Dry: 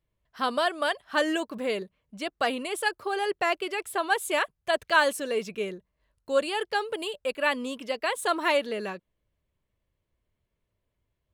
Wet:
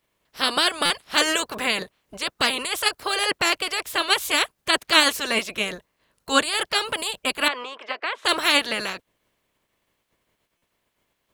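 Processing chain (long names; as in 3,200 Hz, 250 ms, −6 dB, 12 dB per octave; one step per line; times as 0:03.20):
ceiling on every frequency bin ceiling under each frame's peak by 24 dB
0:07.48–0:08.25: band-pass filter 510–2,000 Hz
buffer that repeats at 0:00.85/0:10.57, samples 256, times 8
level +5 dB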